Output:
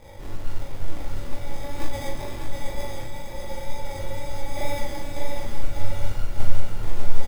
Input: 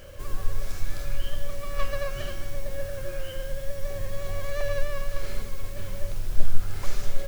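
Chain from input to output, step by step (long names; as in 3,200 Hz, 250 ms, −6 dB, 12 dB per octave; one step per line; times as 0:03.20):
0:02.99–0:03.47: downward compressor, threshold −30 dBFS, peak gain reduction 8 dB
0:04.13–0:04.57: low-pass filter 1,200 Hz
0:05.46–0:06.23: low-shelf EQ 140 Hz +7.5 dB
decimation without filtering 31×
chorus effect 2.1 Hz, delay 17 ms, depth 5.7 ms
log-companded quantiser 8 bits
double-tracking delay 40 ms −3.5 dB
repeating echo 597 ms, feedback 50%, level −5 dB
level +1.5 dB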